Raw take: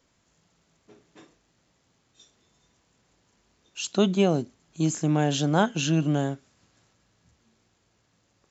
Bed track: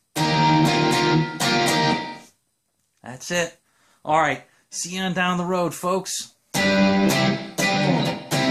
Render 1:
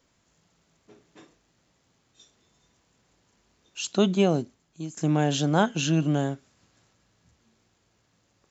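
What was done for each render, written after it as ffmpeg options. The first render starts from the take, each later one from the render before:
ffmpeg -i in.wav -filter_complex "[0:a]asplit=2[link_01][link_02];[link_01]atrim=end=4.97,asetpts=PTS-STARTPTS,afade=type=out:start_time=4.36:duration=0.61:silence=0.105925[link_03];[link_02]atrim=start=4.97,asetpts=PTS-STARTPTS,afade=type=in:duration=0.004:curve=hsin:silence=0.105925[link_04];[link_03][link_04]concat=n=2:v=0:a=1" out.wav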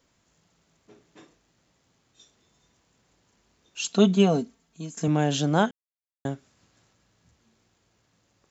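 ffmpeg -i in.wav -filter_complex "[0:a]asettb=1/sr,asplit=3[link_01][link_02][link_03];[link_01]atrim=end=3.794[link_04];[link_02]atrim=start=3.79:end=5.08,asetpts=PTS-STARTPTS,afade=type=in:duration=0.004:curve=qsin,afade=type=out:start_time=1.286:duration=0.004:curve=qsin,aecho=1:1:4.4:0.65,atrim=end_sample=56889[link_05];[link_03]atrim=start=5.076[link_06];[link_04][link_05]acrossfade=duration=0.004:curve1=hsin:curve2=qsin[link_07];[link_07][link_06]acrossfade=duration=0.004:curve1=qsin:curve2=hsin,asplit=3[link_08][link_09][link_10];[link_08]atrim=end=5.71,asetpts=PTS-STARTPTS,afade=type=out:start_time=5.706:duration=0.004:curve=hsin[link_11];[link_09]atrim=start=5.71:end=6.25,asetpts=PTS-STARTPTS,volume=0[link_12];[link_10]atrim=start=6.25,asetpts=PTS-STARTPTS,afade=type=in:duration=0.004:curve=hsin[link_13];[link_11][link_12][link_13]concat=n=3:v=0:a=1" out.wav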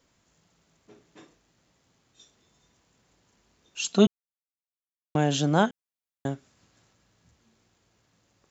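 ffmpeg -i in.wav -filter_complex "[0:a]asplit=3[link_01][link_02][link_03];[link_01]atrim=end=4.07,asetpts=PTS-STARTPTS,afade=type=out:start_time=4.066:duration=0.004:curve=hsin[link_04];[link_02]atrim=start=4.07:end=5.15,asetpts=PTS-STARTPTS,volume=0[link_05];[link_03]atrim=start=5.15,asetpts=PTS-STARTPTS,afade=type=in:duration=0.004:curve=hsin[link_06];[link_04][link_05][link_06]concat=n=3:v=0:a=1" out.wav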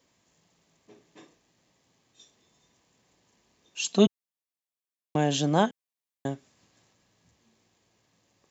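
ffmpeg -i in.wav -af "highpass=frequency=130:poles=1,bandreject=frequency=1400:width=5.8" out.wav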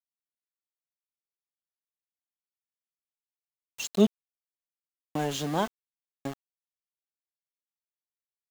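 ffmpeg -i in.wav -af "flanger=delay=2.5:depth=2.5:regen=52:speed=1.4:shape=sinusoidal,aeval=exprs='val(0)*gte(abs(val(0)),0.0188)':channel_layout=same" out.wav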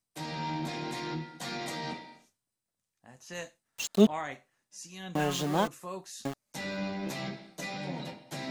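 ffmpeg -i in.wav -i bed.wav -filter_complex "[1:a]volume=-17.5dB[link_01];[0:a][link_01]amix=inputs=2:normalize=0" out.wav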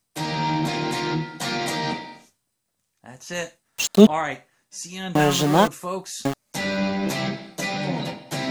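ffmpeg -i in.wav -af "volume=11dB,alimiter=limit=-1dB:level=0:latency=1" out.wav

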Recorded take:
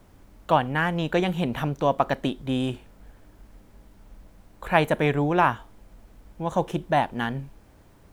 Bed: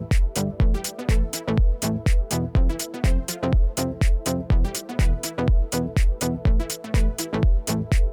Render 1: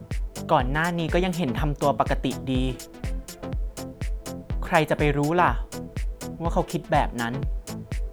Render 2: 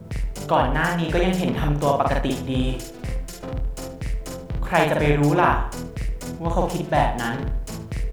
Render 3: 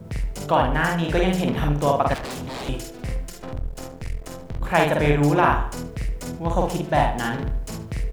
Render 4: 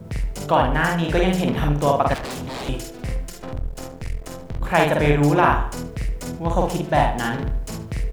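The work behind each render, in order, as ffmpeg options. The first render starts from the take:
ffmpeg -i in.wav -i bed.wav -filter_complex "[1:a]volume=-10.5dB[link_01];[0:a][link_01]amix=inputs=2:normalize=0" out.wav
ffmpeg -i in.wav -filter_complex "[0:a]asplit=2[link_01][link_02];[link_02]adelay=48,volume=-2dB[link_03];[link_01][link_03]amix=inputs=2:normalize=0,asplit=2[link_04][link_05];[link_05]adelay=75,lowpass=frequency=3800:poles=1,volume=-10dB,asplit=2[link_06][link_07];[link_07]adelay=75,lowpass=frequency=3800:poles=1,volume=0.44,asplit=2[link_08][link_09];[link_09]adelay=75,lowpass=frequency=3800:poles=1,volume=0.44,asplit=2[link_10][link_11];[link_11]adelay=75,lowpass=frequency=3800:poles=1,volume=0.44,asplit=2[link_12][link_13];[link_13]adelay=75,lowpass=frequency=3800:poles=1,volume=0.44[link_14];[link_04][link_06][link_08][link_10][link_12][link_14]amix=inputs=6:normalize=0" out.wav
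ffmpeg -i in.wav -filter_complex "[0:a]asettb=1/sr,asplit=3[link_01][link_02][link_03];[link_01]atrim=end=2.144[link_04];[link_02]atrim=start=2.14:end=2.69,asetpts=PTS-STARTPTS,afade=type=in:duration=0.004:curve=qsin,afade=type=out:start_time=0.546:duration=0.004:curve=qsin,aeval=exprs='0.0473*(abs(mod(val(0)/0.0473+3,4)-2)-1)':channel_layout=same[link_05];[link_03]atrim=start=2.686[link_06];[link_04][link_05]acrossfade=duration=0.004:curve1=hsin:curve2=qsin[link_07];[link_07][link_06]acrossfade=duration=0.004:curve1=qsin:curve2=hsin,asettb=1/sr,asplit=3[link_08][link_09][link_10];[link_08]atrim=end=3.294[link_11];[link_09]atrim=start=3.29:end=4.61,asetpts=PTS-STARTPTS,afade=type=in:duration=0.004:curve=qsin,afade=type=out:start_time=1.316:duration=0.004:curve=qsin,aeval=exprs='if(lt(val(0),0),0.251*val(0),val(0))':channel_layout=same[link_12];[link_10]atrim=start=4.606[link_13];[link_11][link_12]acrossfade=duration=0.004:curve1=hsin:curve2=qsin[link_14];[link_14][link_13]acrossfade=duration=0.004:curve1=qsin:curve2=hsin" out.wav
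ffmpeg -i in.wav -af "volume=1.5dB,alimiter=limit=-3dB:level=0:latency=1" out.wav

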